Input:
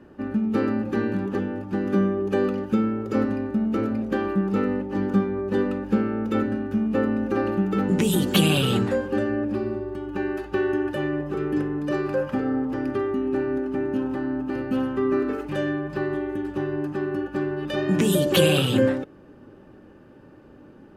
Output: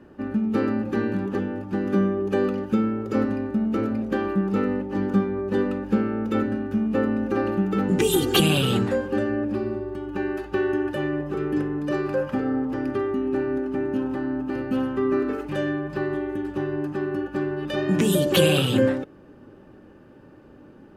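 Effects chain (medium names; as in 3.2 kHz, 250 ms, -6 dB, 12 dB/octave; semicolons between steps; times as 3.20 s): 7.99–8.40 s: comb 2.5 ms, depth 93%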